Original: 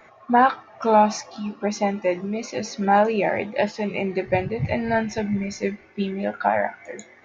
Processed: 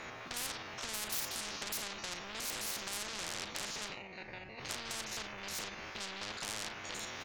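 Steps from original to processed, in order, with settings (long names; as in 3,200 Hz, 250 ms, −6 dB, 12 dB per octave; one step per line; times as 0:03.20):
spectrum averaged block by block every 50 ms
camcorder AGC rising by 17 dB per second
0:01.12–0:01.69: parametric band 5,200 Hz +12 dB 1.1 octaves
0:02.40–0:03.09: high-pass filter 370 Hz 6 dB per octave
0:03.84–0:04.69: duck −22 dB, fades 0.12 s
0:05.24–0:05.84: downward compressor, threshold −25 dBFS, peak gain reduction 8.5 dB
soft clipping −25.5 dBFS, distortion −5 dB
double-tracking delay 37 ms −14 dB
every bin compressed towards the loudest bin 10 to 1
level +5 dB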